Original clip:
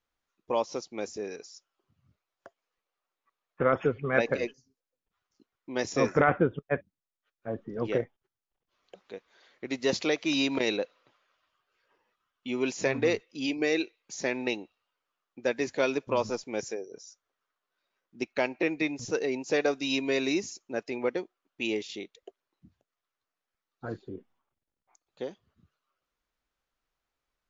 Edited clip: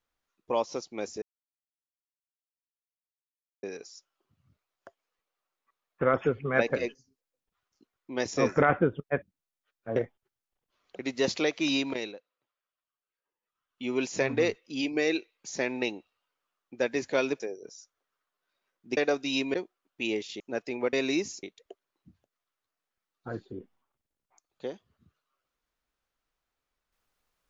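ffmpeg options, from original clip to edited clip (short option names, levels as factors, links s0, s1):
-filter_complex "[0:a]asplit=12[s0][s1][s2][s3][s4][s5][s6][s7][s8][s9][s10][s11];[s0]atrim=end=1.22,asetpts=PTS-STARTPTS,afade=t=out:st=1.216:d=0.004:c=hsin,apad=pad_dur=2.41[s12];[s1]atrim=start=1.22:end=7.552,asetpts=PTS-STARTPTS,afade=t=in:d=0.004:c=hsin[s13];[s2]atrim=start=7.948:end=8.982[s14];[s3]atrim=start=9.638:end=10.85,asetpts=PTS-STARTPTS,afade=t=out:st=0.732:d=0.48:silence=0.0944061[s15];[s4]atrim=start=10.85:end=12.07,asetpts=PTS-STARTPTS,volume=0.0944[s16];[s5]atrim=start=12.07:end=16.052,asetpts=PTS-STARTPTS,afade=t=in:d=0.48:silence=0.0944061[s17];[s6]atrim=start=16.688:end=18.262[s18];[s7]atrim=start=19.538:end=20.112[s19];[s8]atrim=start=21.138:end=22.002[s20];[s9]atrim=start=20.608:end=21.142[s21];[s10]atrim=start=20.108:end=20.612[s22];[s11]atrim=start=21.998[s23];[s12][s13]concat=n=2:v=0:a=1[s24];[s24][s14]acrossfade=d=0.004:c1=hsin:c2=hsin[s25];[s15][s16][s17]concat=n=3:v=0:a=1[s26];[s25][s26]acrossfade=d=0.004:c1=hsin:c2=hsin[s27];[s27][s18]acrossfade=d=0.004:c1=hsin:c2=hsin[s28];[s28][s19]acrossfade=d=0.004:c1=hsin:c2=hsin[s29];[s29][s20]acrossfade=d=0.004:c1=hsin:c2=hsin[s30];[s30][s21]acrossfade=d=0.004:c1=hsin:c2=hsin[s31];[s31][s22]acrossfade=d=0.004:c1=hsin:c2=hsin[s32];[s32][s23]acrossfade=d=0.004:c1=hsin:c2=hsin"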